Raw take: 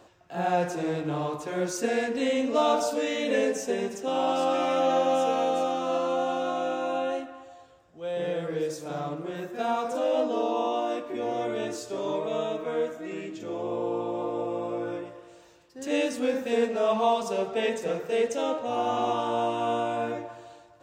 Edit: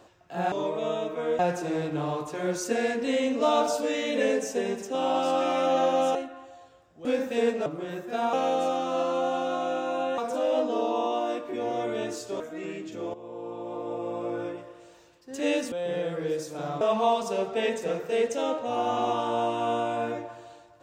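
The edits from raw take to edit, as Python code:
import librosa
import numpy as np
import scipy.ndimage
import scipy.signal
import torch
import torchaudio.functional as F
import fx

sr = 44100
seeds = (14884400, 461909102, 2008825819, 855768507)

y = fx.edit(x, sr, fx.move(start_s=5.28, length_s=1.85, to_s=9.79),
    fx.swap(start_s=8.03, length_s=1.09, other_s=16.2, other_length_s=0.61),
    fx.move(start_s=12.01, length_s=0.87, to_s=0.52),
    fx.fade_in_from(start_s=13.62, length_s=1.18, floor_db=-14.5), tone=tone)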